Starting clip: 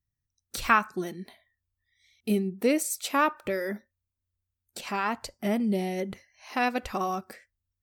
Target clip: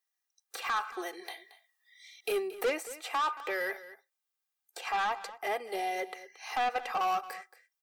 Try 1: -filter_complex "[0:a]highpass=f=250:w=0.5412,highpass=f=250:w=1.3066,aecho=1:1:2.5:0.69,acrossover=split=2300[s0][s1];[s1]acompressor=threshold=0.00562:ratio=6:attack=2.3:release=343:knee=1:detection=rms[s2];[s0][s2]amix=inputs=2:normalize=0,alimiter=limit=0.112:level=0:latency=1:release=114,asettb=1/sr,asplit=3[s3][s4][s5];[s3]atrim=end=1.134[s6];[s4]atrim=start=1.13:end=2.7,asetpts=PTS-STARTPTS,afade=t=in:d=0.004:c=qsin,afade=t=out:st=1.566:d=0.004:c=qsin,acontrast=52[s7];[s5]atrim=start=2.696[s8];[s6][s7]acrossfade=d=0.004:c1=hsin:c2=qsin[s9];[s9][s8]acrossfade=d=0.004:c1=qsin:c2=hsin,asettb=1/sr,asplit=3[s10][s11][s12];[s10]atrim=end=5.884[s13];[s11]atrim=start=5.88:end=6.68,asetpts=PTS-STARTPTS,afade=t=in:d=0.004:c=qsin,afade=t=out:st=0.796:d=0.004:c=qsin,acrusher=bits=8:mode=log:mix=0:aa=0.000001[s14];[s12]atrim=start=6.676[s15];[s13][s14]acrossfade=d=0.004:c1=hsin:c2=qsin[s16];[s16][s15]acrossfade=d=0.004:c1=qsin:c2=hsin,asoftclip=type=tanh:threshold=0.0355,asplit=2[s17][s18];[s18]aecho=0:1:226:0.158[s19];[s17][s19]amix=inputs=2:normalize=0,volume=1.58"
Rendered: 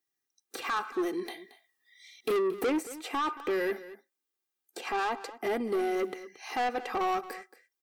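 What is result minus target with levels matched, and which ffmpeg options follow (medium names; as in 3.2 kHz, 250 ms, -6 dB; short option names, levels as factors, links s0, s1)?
250 Hz band +10.5 dB
-filter_complex "[0:a]highpass=f=560:w=0.5412,highpass=f=560:w=1.3066,aecho=1:1:2.5:0.69,acrossover=split=2300[s0][s1];[s1]acompressor=threshold=0.00562:ratio=6:attack=2.3:release=343:knee=1:detection=rms[s2];[s0][s2]amix=inputs=2:normalize=0,alimiter=limit=0.112:level=0:latency=1:release=114,asettb=1/sr,asplit=3[s3][s4][s5];[s3]atrim=end=1.134[s6];[s4]atrim=start=1.13:end=2.7,asetpts=PTS-STARTPTS,afade=t=in:d=0.004:c=qsin,afade=t=out:st=1.566:d=0.004:c=qsin,acontrast=52[s7];[s5]atrim=start=2.696[s8];[s6][s7]acrossfade=d=0.004:c1=hsin:c2=qsin[s9];[s9][s8]acrossfade=d=0.004:c1=qsin:c2=hsin,asettb=1/sr,asplit=3[s10][s11][s12];[s10]atrim=end=5.884[s13];[s11]atrim=start=5.88:end=6.68,asetpts=PTS-STARTPTS,afade=t=in:d=0.004:c=qsin,afade=t=out:st=0.796:d=0.004:c=qsin,acrusher=bits=8:mode=log:mix=0:aa=0.000001[s14];[s12]atrim=start=6.676[s15];[s13][s14]acrossfade=d=0.004:c1=hsin:c2=qsin[s16];[s16][s15]acrossfade=d=0.004:c1=qsin:c2=hsin,asoftclip=type=tanh:threshold=0.0355,asplit=2[s17][s18];[s18]aecho=0:1:226:0.158[s19];[s17][s19]amix=inputs=2:normalize=0,volume=1.58"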